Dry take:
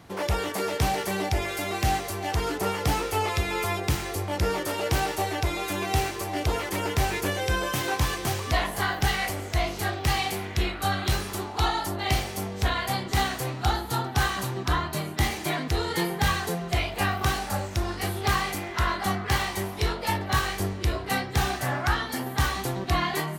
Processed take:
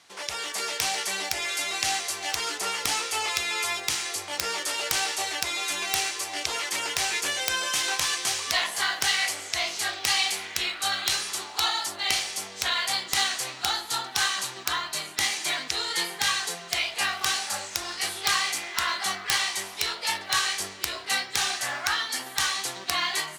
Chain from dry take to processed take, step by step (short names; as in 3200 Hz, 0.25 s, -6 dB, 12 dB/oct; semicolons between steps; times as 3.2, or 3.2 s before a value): weighting filter ITU-R 468; AGC gain up to 10.5 dB; wrapped overs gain 2 dB; modulation noise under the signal 33 dB; gain -7.5 dB